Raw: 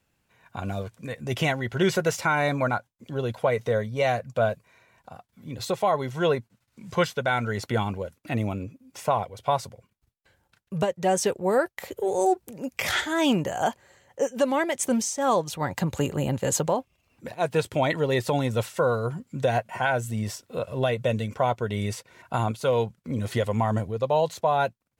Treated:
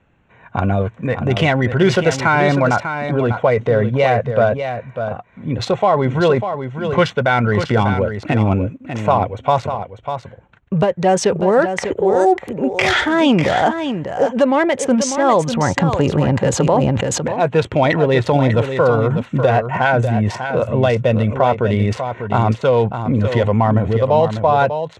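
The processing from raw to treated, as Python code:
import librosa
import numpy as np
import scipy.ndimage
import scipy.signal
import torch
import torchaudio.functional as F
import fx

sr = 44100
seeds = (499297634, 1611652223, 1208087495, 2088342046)

p1 = fx.wiener(x, sr, points=9)
p2 = fx.high_shelf(p1, sr, hz=7700.0, db=7.5, at=(7.73, 9.6))
p3 = fx.over_compress(p2, sr, threshold_db=-31.0, ratio=-1.0)
p4 = p2 + (p3 * librosa.db_to_amplitude(-3.0))
p5 = fx.air_absorb(p4, sr, metres=99.0)
p6 = p5 + fx.echo_single(p5, sr, ms=596, db=-8.5, dry=0)
p7 = fx.sustainer(p6, sr, db_per_s=20.0, at=(16.56, 17.29))
y = p7 * librosa.db_to_amplitude(8.0)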